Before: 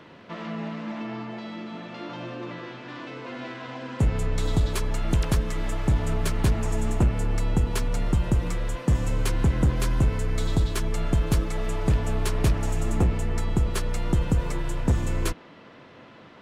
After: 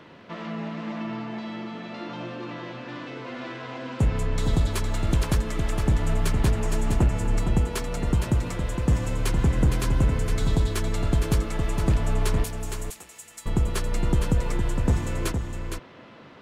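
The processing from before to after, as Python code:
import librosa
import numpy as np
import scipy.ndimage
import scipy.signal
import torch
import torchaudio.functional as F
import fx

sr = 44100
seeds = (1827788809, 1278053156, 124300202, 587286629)

p1 = fx.differentiator(x, sr, at=(12.44, 13.46))
y = p1 + fx.echo_single(p1, sr, ms=462, db=-6.5, dry=0)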